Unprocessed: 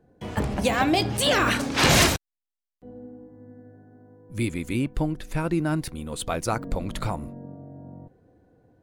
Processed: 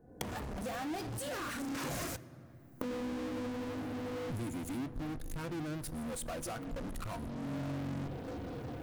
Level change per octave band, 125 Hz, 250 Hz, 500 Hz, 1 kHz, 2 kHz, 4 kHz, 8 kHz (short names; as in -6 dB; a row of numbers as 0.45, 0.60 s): -12.5, -10.0, -12.0, -14.5, -17.5, -20.5, -15.0 dB